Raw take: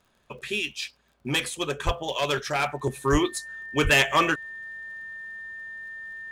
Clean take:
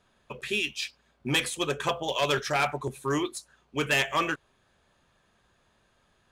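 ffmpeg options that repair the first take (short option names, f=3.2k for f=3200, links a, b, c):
-filter_complex "[0:a]adeclick=t=4,bandreject=f=1.8k:w=30,asplit=3[a][b][c];[a]afade=t=out:st=1.85:d=0.02[d];[b]highpass=f=140:w=0.5412,highpass=f=140:w=1.3066,afade=t=in:st=1.85:d=0.02,afade=t=out:st=1.97:d=0.02[e];[c]afade=t=in:st=1.97:d=0.02[f];[d][e][f]amix=inputs=3:normalize=0,asplit=3[g][h][i];[g]afade=t=out:st=3.11:d=0.02[j];[h]highpass=f=140:w=0.5412,highpass=f=140:w=1.3066,afade=t=in:st=3.11:d=0.02,afade=t=out:st=3.23:d=0.02[k];[i]afade=t=in:st=3.23:d=0.02[l];[j][k][l]amix=inputs=3:normalize=0,asplit=3[m][n][o];[m]afade=t=out:st=3.83:d=0.02[p];[n]highpass=f=140:w=0.5412,highpass=f=140:w=1.3066,afade=t=in:st=3.83:d=0.02,afade=t=out:st=3.95:d=0.02[q];[o]afade=t=in:st=3.95:d=0.02[r];[p][q][r]amix=inputs=3:normalize=0,asetnsamples=n=441:p=0,asendcmd='2.83 volume volume -5.5dB',volume=0dB"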